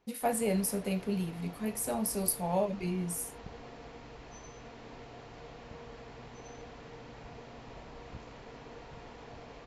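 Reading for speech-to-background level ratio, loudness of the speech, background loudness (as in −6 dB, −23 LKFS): 16.0 dB, −33.0 LKFS, −49.0 LKFS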